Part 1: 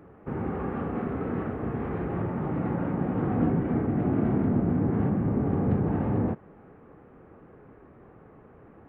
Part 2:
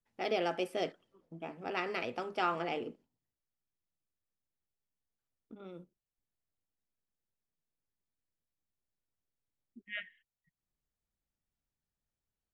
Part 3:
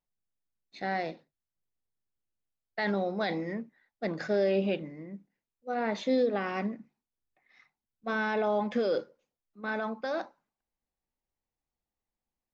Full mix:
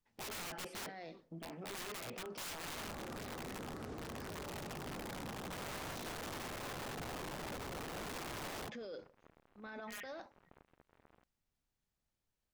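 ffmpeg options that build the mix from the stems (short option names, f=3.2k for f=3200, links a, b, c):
-filter_complex "[0:a]acrusher=bits=6:mix=0:aa=0.5,adelay=2350,volume=-7dB[a];[1:a]lowpass=7.1k,volume=3dB[b];[2:a]highshelf=f=3.6k:g=6.5,alimiter=level_in=4.5dB:limit=-24dB:level=0:latency=1:release=193,volume=-4.5dB,volume=-7dB[c];[a][b][c]amix=inputs=3:normalize=0,aeval=exprs='(mod(33.5*val(0)+1,2)-1)/33.5':c=same,alimiter=level_in=15.5dB:limit=-24dB:level=0:latency=1:release=17,volume=-15.5dB"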